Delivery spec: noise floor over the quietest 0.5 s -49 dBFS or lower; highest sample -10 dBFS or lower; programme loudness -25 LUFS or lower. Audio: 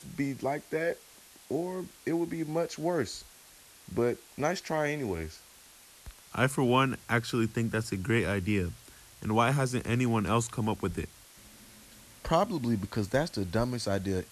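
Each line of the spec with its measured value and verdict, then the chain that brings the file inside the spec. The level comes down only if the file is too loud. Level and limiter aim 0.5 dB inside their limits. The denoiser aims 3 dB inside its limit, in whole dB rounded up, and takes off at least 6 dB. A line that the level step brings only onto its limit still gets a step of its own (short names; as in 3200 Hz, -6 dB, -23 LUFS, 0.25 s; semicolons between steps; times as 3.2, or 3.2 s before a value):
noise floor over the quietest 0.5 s -55 dBFS: OK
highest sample -12.0 dBFS: OK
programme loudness -30.5 LUFS: OK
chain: none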